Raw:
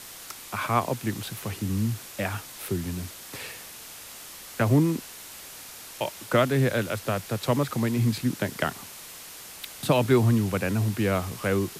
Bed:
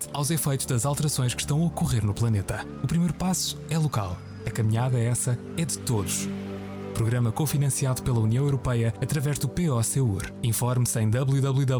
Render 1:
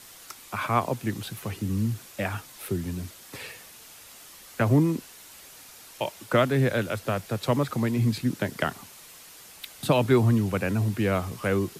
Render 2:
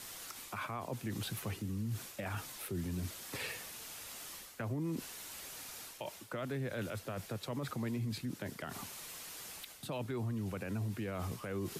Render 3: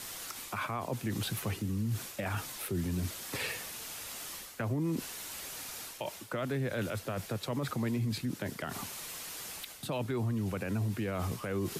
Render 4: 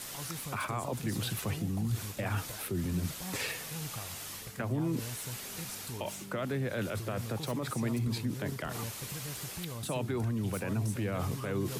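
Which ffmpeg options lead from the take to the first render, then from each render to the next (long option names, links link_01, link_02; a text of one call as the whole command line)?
ffmpeg -i in.wav -af "afftdn=noise_reduction=6:noise_floor=-43" out.wav
ffmpeg -i in.wav -af "areverse,acompressor=threshold=-32dB:ratio=5,areverse,alimiter=level_in=6.5dB:limit=-24dB:level=0:latency=1:release=64,volume=-6.5dB" out.wav
ffmpeg -i in.wav -af "volume=5dB" out.wav
ffmpeg -i in.wav -i bed.wav -filter_complex "[1:a]volume=-17dB[link_01];[0:a][link_01]amix=inputs=2:normalize=0" out.wav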